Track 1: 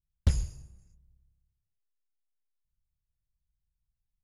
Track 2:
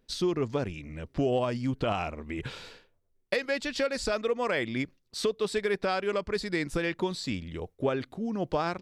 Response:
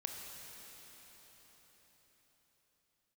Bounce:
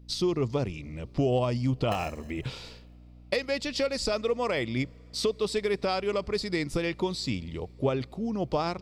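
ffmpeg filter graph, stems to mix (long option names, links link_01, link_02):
-filter_complex "[0:a]acompressor=threshold=-32dB:ratio=3,lowpass=frequency=7200:width_type=q:width=2.3,aeval=exprs='val(0)*sgn(sin(2*PI*580*n/s))':channel_layout=same,adelay=1650,volume=-8dB[link_01];[1:a]equalizer=frequency=125:width_type=o:width=0.33:gain=6,equalizer=frequency=1600:width_type=o:width=0.33:gain=-10,equalizer=frequency=5000:width_type=o:width=0.33:gain=5,volume=0.5dB,asplit=2[link_02][link_03];[link_03]volume=-24dB[link_04];[2:a]atrim=start_sample=2205[link_05];[link_04][link_05]afir=irnorm=-1:irlink=0[link_06];[link_01][link_02][link_06]amix=inputs=3:normalize=0,aeval=exprs='val(0)+0.00355*(sin(2*PI*60*n/s)+sin(2*PI*2*60*n/s)/2+sin(2*PI*3*60*n/s)/3+sin(2*PI*4*60*n/s)/4+sin(2*PI*5*60*n/s)/5)':channel_layout=same"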